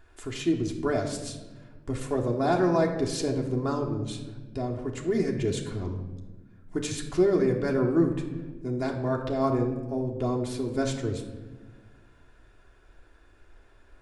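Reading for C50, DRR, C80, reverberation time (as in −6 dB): 7.0 dB, −0.5 dB, 9.5 dB, 1.3 s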